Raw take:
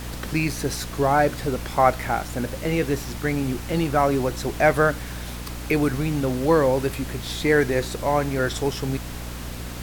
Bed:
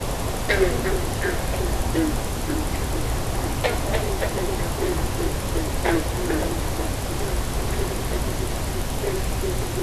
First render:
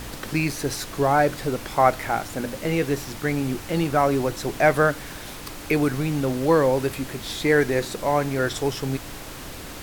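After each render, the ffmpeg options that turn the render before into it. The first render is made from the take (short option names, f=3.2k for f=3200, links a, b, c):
-af "bandreject=f=60:t=h:w=4,bandreject=f=120:t=h:w=4,bandreject=f=180:t=h:w=4,bandreject=f=240:t=h:w=4"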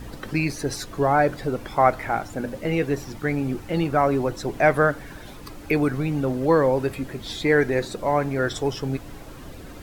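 -af "afftdn=nr=11:nf=-37"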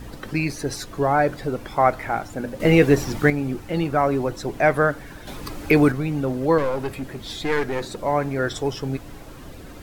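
-filter_complex "[0:a]asettb=1/sr,asplit=3[a][b][c];[a]atrim=end=5.274[d];[b]atrim=start=5.27:end=5.92,asetpts=PTS-STARTPTS,afade=t=in:d=0.004:c=qsin,afade=t=out:st=0.646:d=0.004:c=qsin,acontrast=54[e];[c]atrim=start=5.916[f];[d][e]acrossfade=d=0.004:c1=hsin:c2=qsin[g];[g][f]acrossfade=d=0.004:c1=qsin:c2=hsin,asettb=1/sr,asplit=3[h][i][j];[h]atrim=end=6.584[k];[i]atrim=start=6.58:end=7.98,asetpts=PTS-STARTPTS,afade=t=in:d=0.004:c=qsin,afade=t=out:st=1.396:d=0.004:c=qsin,aeval=exprs='clip(val(0),-1,0.0422)':c=same[l];[j]atrim=start=7.976[m];[k][l]acrossfade=d=0.004:c1=hsin:c2=qsin[n];[n][m]acrossfade=d=0.004:c1=qsin:c2=hsin,asplit=3[o][p][q];[o]atrim=end=2.602[r];[p]atrim=start=2.598:end=3.302,asetpts=PTS-STARTPTS,volume=8.5dB[s];[q]atrim=start=3.298[t];[r][s]acrossfade=d=0.004:c1=hsin:c2=hsin[u];[u][t]acrossfade=d=0.004:c1=hsin:c2=hsin"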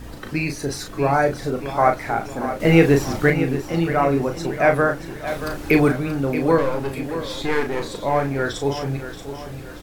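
-filter_complex "[0:a]asplit=2[a][b];[b]adelay=36,volume=-6dB[c];[a][c]amix=inputs=2:normalize=0,aecho=1:1:630|1260|1890|2520|3150:0.282|0.124|0.0546|0.024|0.0106"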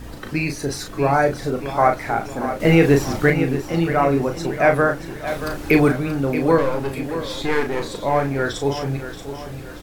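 -af "volume=1dB,alimiter=limit=-3dB:level=0:latency=1"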